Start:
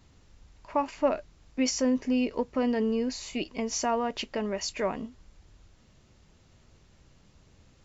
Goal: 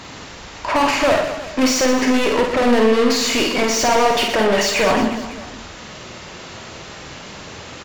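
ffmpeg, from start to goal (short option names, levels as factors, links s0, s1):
-filter_complex "[0:a]asplit=2[s0][s1];[s1]highpass=f=720:p=1,volume=56.2,asoftclip=type=tanh:threshold=0.211[s2];[s0][s2]amix=inputs=2:normalize=0,lowpass=f=3400:p=1,volume=0.501,aecho=1:1:50|120|218|355.2|547.3:0.631|0.398|0.251|0.158|0.1,volume=1.41"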